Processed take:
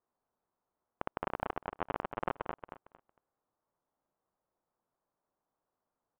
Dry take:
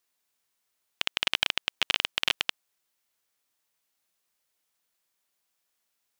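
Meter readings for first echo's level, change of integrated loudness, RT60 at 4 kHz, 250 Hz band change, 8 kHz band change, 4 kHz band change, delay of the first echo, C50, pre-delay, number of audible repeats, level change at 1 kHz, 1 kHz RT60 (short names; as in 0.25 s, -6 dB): -8.5 dB, -12.5 dB, none, +4.5 dB, under -35 dB, -32.0 dB, 0.228 s, none, none, 3, +2.0 dB, none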